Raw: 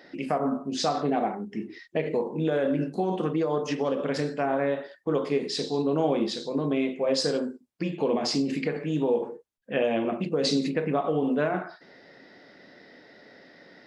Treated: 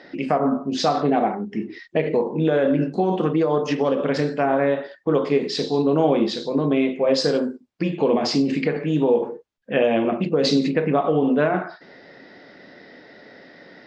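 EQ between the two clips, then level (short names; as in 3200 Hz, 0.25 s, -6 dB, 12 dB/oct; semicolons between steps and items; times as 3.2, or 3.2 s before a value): LPF 7500 Hz 12 dB/oct; air absorption 57 m; +6.5 dB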